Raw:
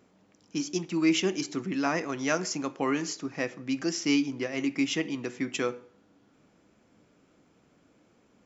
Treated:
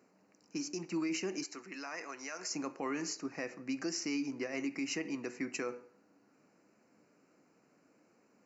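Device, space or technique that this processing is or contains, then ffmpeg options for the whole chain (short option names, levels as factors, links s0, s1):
PA system with an anti-feedback notch: -filter_complex "[0:a]highpass=160,asuperstop=centerf=3400:order=4:qfactor=2.5,alimiter=limit=0.0668:level=0:latency=1:release=56,asettb=1/sr,asplit=3[s0][s1][s2];[s0]atrim=end=1.444[s3];[s1]atrim=start=1.44:end=2.51,asetpts=PTS-STARTPTS,afade=t=in:d=0.004:c=qsin,afade=t=out:st=1.066:d=0.004:c=qsin,highpass=f=1100:p=1[s4];[s2]atrim=start=2.506[s5];[s3][s4]acrossfade=d=0.004:c1=hsin:c2=qsin[s6];[s6][s5]acrossfade=d=0.004:c1=qsin:c2=hsin,lowshelf=f=190:g=-4,volume=0.668"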